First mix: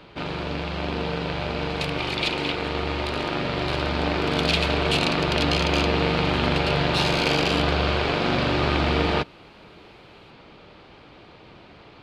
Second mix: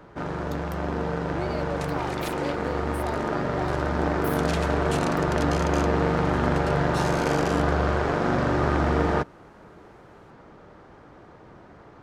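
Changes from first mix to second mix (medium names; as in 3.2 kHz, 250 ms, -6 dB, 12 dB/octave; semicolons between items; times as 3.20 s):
speech: unmuted; master: add high-order bell 3.3 kHz -14.5 dB 1.3 oct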